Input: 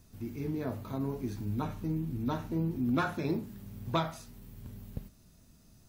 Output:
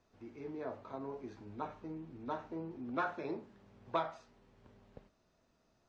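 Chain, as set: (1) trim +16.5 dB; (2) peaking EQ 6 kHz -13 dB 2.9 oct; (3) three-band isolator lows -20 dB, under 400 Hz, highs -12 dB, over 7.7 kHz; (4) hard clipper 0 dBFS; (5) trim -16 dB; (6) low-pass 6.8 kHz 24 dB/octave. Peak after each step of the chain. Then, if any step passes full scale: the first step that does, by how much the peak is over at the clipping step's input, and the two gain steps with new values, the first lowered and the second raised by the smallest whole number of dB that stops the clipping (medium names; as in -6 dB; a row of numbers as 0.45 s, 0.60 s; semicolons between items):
-1.0 dBFS, -2.5 dBFS, -5.0 dBFS, -5.0 dBFS, -21.0 dBFS, -21.0 dBFS; nothing clips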